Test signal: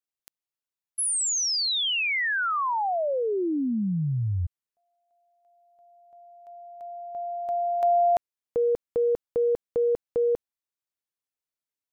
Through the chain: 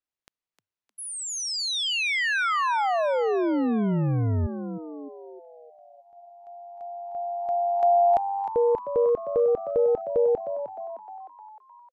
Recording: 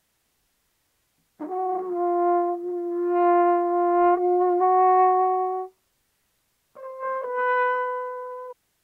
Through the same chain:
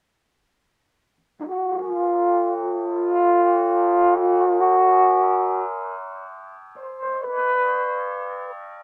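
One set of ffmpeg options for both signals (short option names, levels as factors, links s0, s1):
-filter_complex "[0:a]aemphasis=mode=reproduction:type=50fm,asplit=7[s0][s1][s2][s3][s4][s5][s6];[s1]adelay=307,afreqshift=97,volume=0.316[s7];[s2]adelay=614,afreqshift=194,volume=0.174[s8];[s3]adelay=921,afreqshift=291,volume=0.0955[s9];[s4]adelay=1228,afreqshift=388,volume=0.0525[s10];[s5]adelay=1535,afreqshift=485,volume=0.0288[s11];[s6]adelay=1842,afreqshift=582,volume=0.0158[s12];[s0][s7][s8][s9][s10][s11][s12]amix=inputs=7:normalize=0,volume=1.19"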